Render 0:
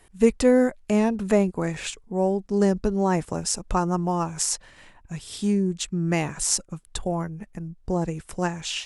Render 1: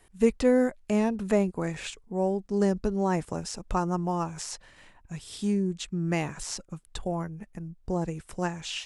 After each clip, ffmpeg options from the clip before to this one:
ffmpeg -i in.wav -filter_complex "[0:a]acrossover=split=5000[link_01][link_02];[link_02]acompressor=threshold=-36dB:ratio=4:attack=1:release=60[link_03];[link_01][link_03]amix=inputs=2:normalize=0,volume=-4dB" out.wav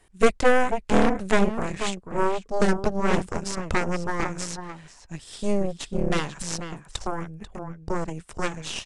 ffmpeg -i in.wav -filter_complex "[0:a]asplit=2[link_01][link_02];[link_02]adelay=489.8,volume=-7dB,highshelf=frequency=4000:gain=-11[link_03];[link_01][link_03]amix=inputs=2:normalize=0,aeval=exprs='0.316*(cos(1*acos(clip(val(0)/0.316,-1,1)))-cos(1*PI/2))+0.141*(cos(6*acos(clip(val(0)/0.316,-1,1)))-cos(6*PI/2))':channel_layout=same,aresample=22050,aresample=44100" out.wav

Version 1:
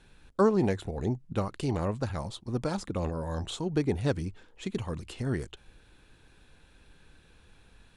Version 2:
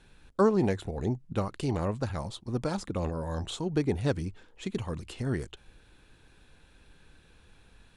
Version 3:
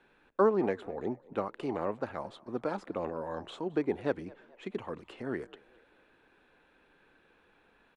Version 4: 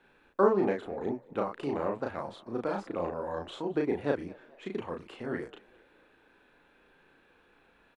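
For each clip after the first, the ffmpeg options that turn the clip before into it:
ffmpeg -i in.wav -af anull out.wav
ffmpeg -i in.wav -filter_complex "[0:a]acrossover=split=240 2700:gain=0.0891 1 0.112[link_01][link_02][link_03];[link_01][link_02][link_03]amix=inputs=3:normalize=0,asplit=4[link_04][link_05][link_06][link_07];[link_05]adelay=217,afreqshift=53,volume=-23.5dB[link_08];[link_06]adelay=434,afreqshift=106,volume=-30.4dB[link_09];[link_07]adelay=651,afreqshift=159,volume=-37.4dB[link_10];[link_04][link_08][link_09][link_10]amix=inputs=4:normalize=0" out.wav
ffmpeg -i in.wav -filter_complex "[0:a]asplit=2[link_01][link_02];[link_02]adelay=35,volume=-2.5dB[link_03];[link_01][link_03]amix=inputs=2:normalize=0" out.wav

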